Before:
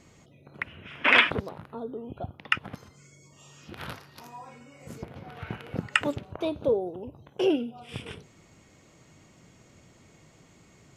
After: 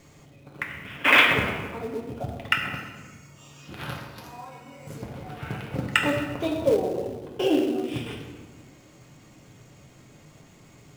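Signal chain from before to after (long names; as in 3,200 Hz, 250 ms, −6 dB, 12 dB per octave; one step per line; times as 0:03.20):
convolution reverb RT60 1.4 s, pre-delay 6 ms, DRR −0.5 dB
in parallel at −7.5 dB: log-companded quantiser 4 bits
on the sum: level −2.5 dB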